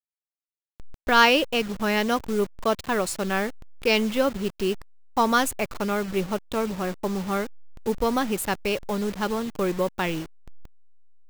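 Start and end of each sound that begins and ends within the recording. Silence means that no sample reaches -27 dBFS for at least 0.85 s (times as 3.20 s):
1.07–10.22 s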